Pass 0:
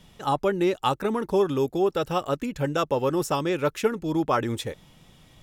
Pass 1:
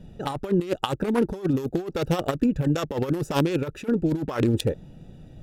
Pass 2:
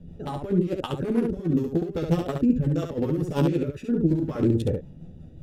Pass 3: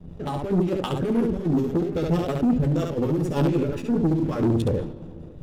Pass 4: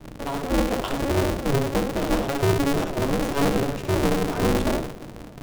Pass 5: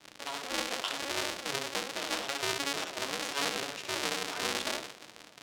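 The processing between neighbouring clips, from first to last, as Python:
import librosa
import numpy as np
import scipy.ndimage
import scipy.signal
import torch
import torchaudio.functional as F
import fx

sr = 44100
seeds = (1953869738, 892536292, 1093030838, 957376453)

y1 = fx.wiener(x, sr, points=41)
y1 = fx.over_compress(y1, sr, threshold_db=-29.0, ratio=-0.5)
y1 = fx.high_shelf(y1, sr, hz=3500.0, db=9.5)
y1 = y1 * librosa.db_to_amplitude(6.0)
y2 = fx.tilt_shelf(y1, sr, db=4.5, hz=680.0)
y2 = fx.rotary(y2, sr, hz=5.5)
y2 = fx.room_early_taps(y2, sr, ms=(12, 70), db=(-3.5, -3.5))
y2 = y2 * librosa.db_to_amplitude(-4.0)
y3 = fx.leveller(y2, sr, passes=2)
y3 = fx.rev_freeverb(y3, sr, rt60_s=3.6, hf_ratio=0.5, predelay_ms=45, drr_db=17.5)
y3 = fx.sustainer(y3, sr, db_per_s=80.0)
y3 = y3 * librosa.db_to_amplitude(-4.5)
y4 = y3 * np.sign(np.sin(2.0 * np.pi * 140.0 * np.arange(len(y3)) / sr))
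y5 = fx.bandpass_q(y4, sr, hz=4400.0, q=0.73)
y5 = y5 * librosa.db_to_amplitude(2.0)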